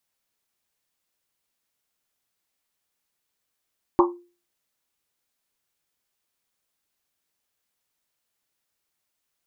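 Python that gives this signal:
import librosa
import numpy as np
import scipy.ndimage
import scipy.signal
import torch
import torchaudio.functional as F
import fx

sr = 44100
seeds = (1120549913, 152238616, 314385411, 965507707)

y = fx.risset_drum(sr, seeds[0], length_s=1.1, hz=350.0, decay_s=0.36, noise_hz=1000.0, noise_width_hz=310.0, noise_pct=35)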